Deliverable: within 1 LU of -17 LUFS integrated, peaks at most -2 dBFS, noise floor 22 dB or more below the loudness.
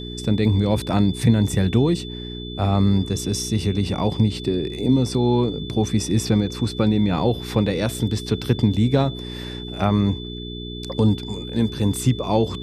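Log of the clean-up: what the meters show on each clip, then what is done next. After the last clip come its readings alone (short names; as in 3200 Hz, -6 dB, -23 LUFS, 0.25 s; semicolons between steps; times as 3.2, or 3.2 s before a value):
hum 60 Hz; harmonics up to 420 Hz; hum level -30 dBFS; steady tone 3500 Hz; tone level -36 dBFS; loudness -21.0 LUFS; peak -3.5 dBFS; loudness target -17.0 LUFS
-> de-hum 60 Hz, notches 7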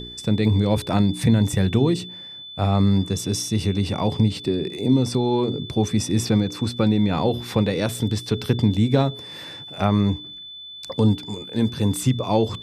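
hum none; steady tone 3500 Hz; tone level -36 dBFS
-> notch 3500 Hz, Q 30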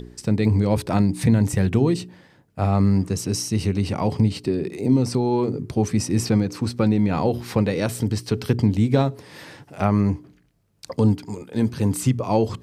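steady tone none; loudness -22.0 LUFS; peak -5.0 dBFS; loudness target -17.0 LUFS
-> gain +5 dB; limiter -2 dBFS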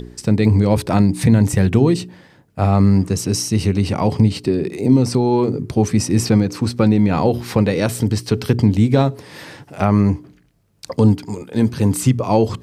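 loudness -17.0 LUFS; peak -2.0 dBFS; noise floor -51 dBFS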